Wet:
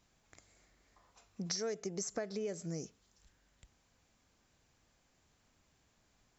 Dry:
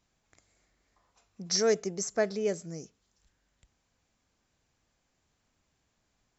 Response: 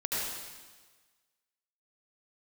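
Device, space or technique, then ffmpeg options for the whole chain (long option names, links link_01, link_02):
serial compression, peaks first: -af "acompressor=threshold=-34dB:ratio=5,acompressor=threshold=-40dB:ratio=2.5,volume=3dB"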